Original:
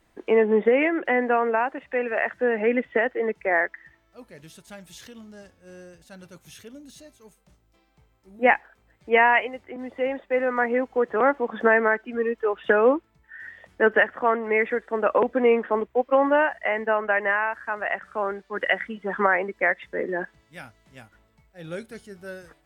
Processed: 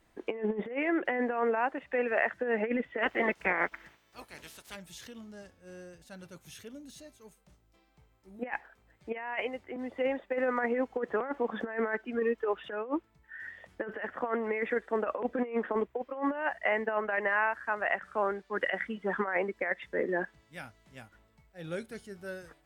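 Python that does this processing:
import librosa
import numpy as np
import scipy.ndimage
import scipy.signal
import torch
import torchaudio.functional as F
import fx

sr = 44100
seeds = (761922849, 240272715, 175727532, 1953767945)

y = fx.spec_clip(x, sr, under_db=21, at=(3.02, 4.75), fade=0.02)
y = fx.over_compress(y, sr, threshold_db=-23.0, ratio=-0.5)
y = F.gain(torch.from_numpy(y), -6.0).numpy()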